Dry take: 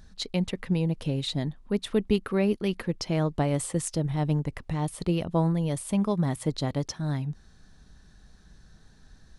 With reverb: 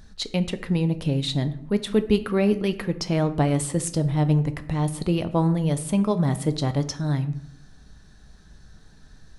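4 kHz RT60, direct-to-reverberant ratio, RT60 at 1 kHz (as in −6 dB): 0.45 s, 10.0 dB, 0.70 s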